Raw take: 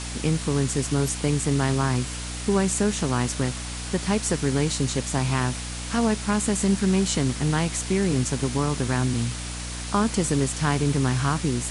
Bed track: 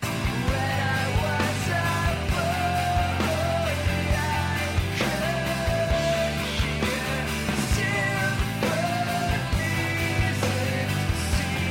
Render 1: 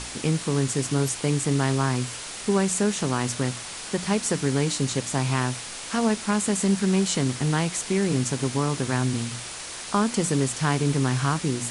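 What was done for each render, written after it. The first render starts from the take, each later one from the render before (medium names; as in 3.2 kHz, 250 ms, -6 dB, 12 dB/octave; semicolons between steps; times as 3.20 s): hum notches 60/120/180/240/300 Hz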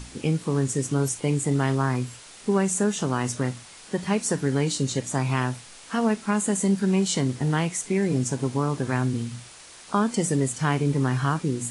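noise print and reduce 10 dB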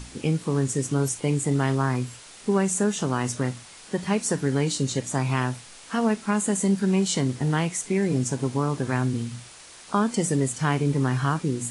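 no audible change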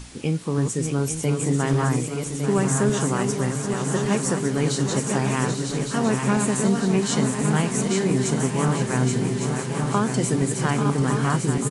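backward echo that repeats 579 ms, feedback 77%, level -5.5 dB; feedback delay 840 ms, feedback 53%, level -9.5 dB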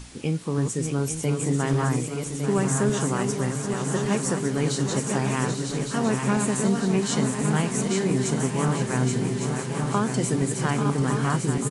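trim -2 dB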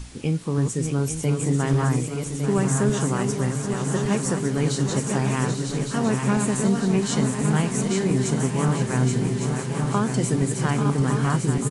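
bass shelf 110 Hz +8 dB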